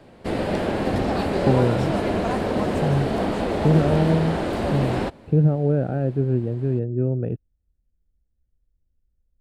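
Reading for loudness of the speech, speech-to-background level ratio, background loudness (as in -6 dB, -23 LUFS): -23.0 LUFS, 1.5 dB, -24.5 LUFS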